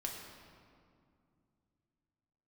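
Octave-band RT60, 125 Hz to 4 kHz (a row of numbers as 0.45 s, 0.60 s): 3.6 s, 3.3 s, 2.5 s, 2.2 s, 1.7 s, 1.4 s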